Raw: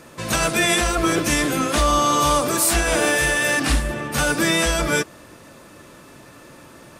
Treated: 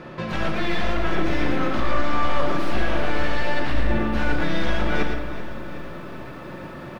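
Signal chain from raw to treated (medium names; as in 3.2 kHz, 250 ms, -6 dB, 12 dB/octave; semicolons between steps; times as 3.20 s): one-sided wavefolder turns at -20.5 dBFS; reverse; compression 6:1, threshold -28 dBFS, peak gain reduction 12 dB; reverse; distance through air 300 m; delay 113 ms -7 dB; simulated room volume 1100 m³, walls mixed, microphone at 0.99 m; bit-crushed delay 378 ms, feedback 55%, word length 9-bit, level -14.5 dB; trim +6.5 dB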